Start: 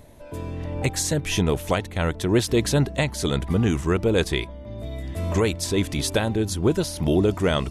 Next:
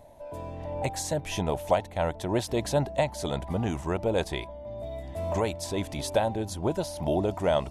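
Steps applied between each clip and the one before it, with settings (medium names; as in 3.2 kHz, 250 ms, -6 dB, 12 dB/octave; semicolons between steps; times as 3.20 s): high-order bell 730 Hz +11.5 dB 1 oct; trim -8.5 dB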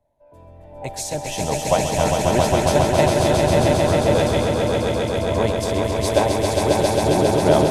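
echo with a slow build-up 135 ms, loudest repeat 5, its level -3 dB; three bands expanded up and down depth 70%; trim +4.5 dB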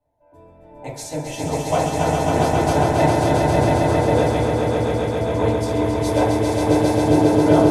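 FDN reverb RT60 0.66 s, low-frequency decay 0.85×, high-frequency decay 0.3×, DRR -7.5 dB; trim -9 dB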